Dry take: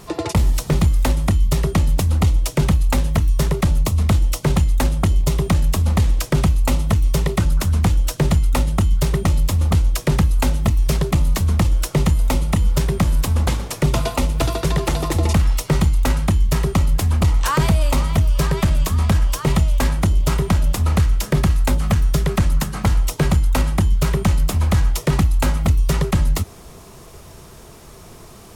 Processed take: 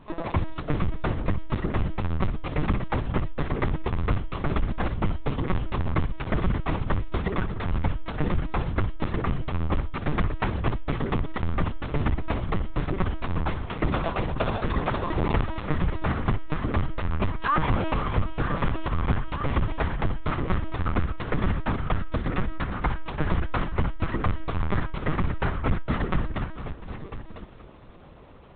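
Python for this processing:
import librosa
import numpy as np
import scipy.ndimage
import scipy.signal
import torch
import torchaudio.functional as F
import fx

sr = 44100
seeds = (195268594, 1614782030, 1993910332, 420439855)

p1 = fx.lowpass(x, sr, hz=2600.0, slope=6)
p2 = p1 + 10.0 ** (-11.0 / 20.0) * np.pad(p1, (int(1003 * sr / 1000.0), 0))[:len(p1)]
p3 = fx.dynamic_eq(p2, sr, hz=1400.0, q=1.1, threshold_db=-41.0, ratio=4.0, max_db=6)
p4 = scipy.signal.sosfilt(scipy.signal.butter(2, 67.0, 'highpass', fs=sr, output='sos'), p3)
p5 = p4 + fx.echo_feedback(p4, sr, ms=232, feedback_pct=58, wet_db=-12.5, dry=0)
p6 = fx.lpc_vocoder(p5, sr, seeds[0], excitation='pitch_kept', order=10)
y = F.gain(torch.from_numpy(p6), -6.5).numpy()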